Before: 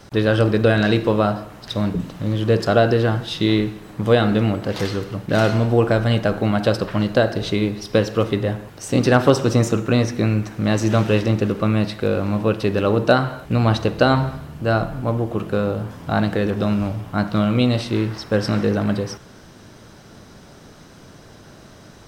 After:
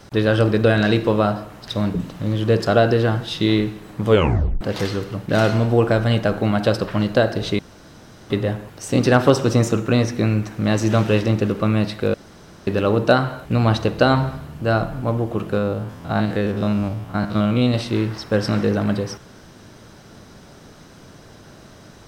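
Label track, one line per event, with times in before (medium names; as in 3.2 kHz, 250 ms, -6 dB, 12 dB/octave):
4.090000	4.090000	tape stop 0.52 s
7.590000	8.300000	room tone
12.140000	12.670000	room tone
15.580000	17.740000	spectrogram pixelated in time every 50 ms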